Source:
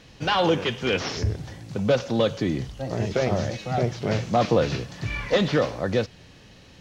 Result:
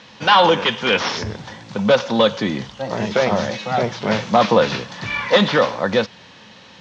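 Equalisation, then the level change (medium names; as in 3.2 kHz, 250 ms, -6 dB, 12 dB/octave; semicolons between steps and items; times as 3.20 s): cabinet simulation 100–6700 Hz, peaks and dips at 210 Hz +10 dB, 520 Hz +5 dB, 940 Hz +8 dB, 3.5 kHz +5 dB; peaking EQ 1.4 kHz +10.5 dB 2.2 oct; treble shelf 3.7 kHz +9 dB; -2.0 dB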